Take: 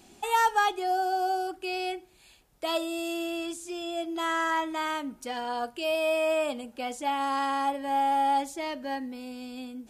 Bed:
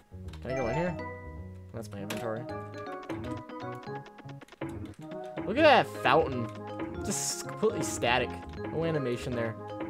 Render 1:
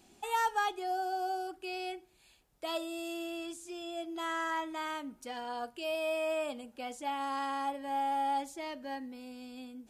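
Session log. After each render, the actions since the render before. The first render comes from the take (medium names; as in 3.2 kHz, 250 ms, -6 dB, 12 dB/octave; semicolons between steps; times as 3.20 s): trim -7 dB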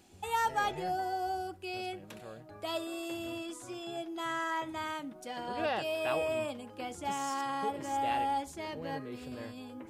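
add bed -13 dB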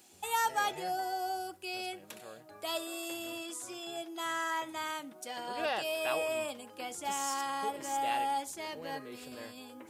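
high-pass 390 Hz 6 dB/octave; treble shelf 5.3 kHz +10 dB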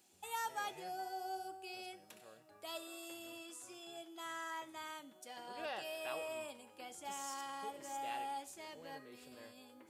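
feedback comb 190 Hz, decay 1.4 s, mix 70%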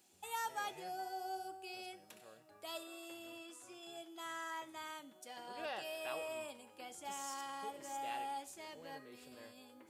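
2.83–3.83 s: tone controls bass -1 dB, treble -5 dB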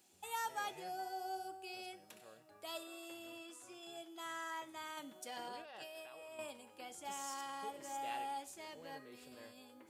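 4.97–6.39 s: compressor with a negative ratio -50 dBFS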